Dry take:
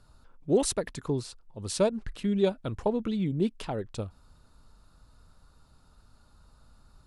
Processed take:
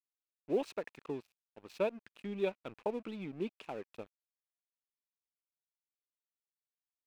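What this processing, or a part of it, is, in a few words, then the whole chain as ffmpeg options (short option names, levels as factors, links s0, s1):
pocket radio on a weak battery: -af "highpass=270,lowpass=3000,aeval=exprs='sgn(val(0))*max(abs(val(0))-0.00422,0)':c=same,equalizer=f=2500:t=o:w=0.29:g=11,volume=0.447"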